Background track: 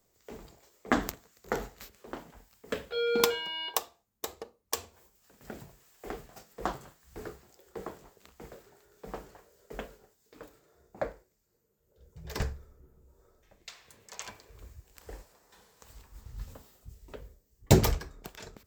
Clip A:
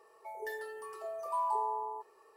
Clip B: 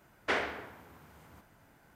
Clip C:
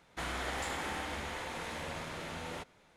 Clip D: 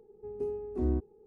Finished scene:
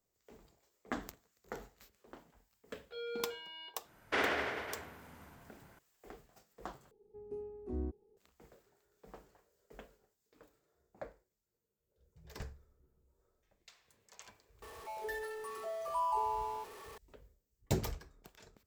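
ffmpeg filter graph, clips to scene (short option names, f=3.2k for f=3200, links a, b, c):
-filter_complex "[0:a]volume=-13dB[a];[2:a]aecho=1:1:50|107.5|173.6|249.7|337.1|437.7|553.3:0.794|0.631|0.501|0.398|0.316|0.251|0.2[b];[1:a]aeval=exprs='val(0)+0.5*0.00531*sgn(val(0))':c=same[c];[a]asplit=2[d][e];[d]atrim=end=6.914[f];[4:a]atrim=end=1.26,asetpts=PTS-STARTPTS,volume=-9.5dB[g];[e]atrim=start=8.166[h];[b]atrim=end=1.95,asetpts=PTS-STARTPTS,volume=-3.5dB,afade=t=in:d=0.004:c=hsin,afade=t=out:st=1.946:d=0.004:c=hsin,adelay=3840[i];[c]atrim=end=2.36,asetpts=PTS-STARTPTS,volume=-2dB,afade=t=in:d=0.004:c=hsin,afade=t=out:st=2.356:d=0.004:c=hsin,adelay=14620[j];[f][g]acrossfade=d=0.004:c1=hsin:c2=hsin[k];[k][h]acrossfade=d=0.004:c1=hsin:c2=hsin[l];[l][i][j]amix=inputs=3:normalize=0"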